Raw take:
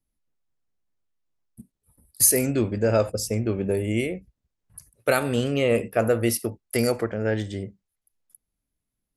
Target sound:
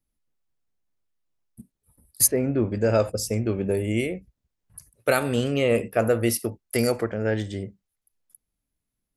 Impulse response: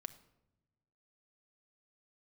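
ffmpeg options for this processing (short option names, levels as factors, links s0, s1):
-filter_complex "[0:a]asplit=3[s0][s1][s2];[s0]afade=t=out:st=2.26:d=0.02[s3];[s1]lowpass=1500,afade=t=in:st=2.26:d=0.02,afade=t=out:st=2.7:d=0.02[s4];[s2]afade=t=in:st=2.7:d=0.02[s5];[s3][s4][s5]amix=inputs=3:normalize=0"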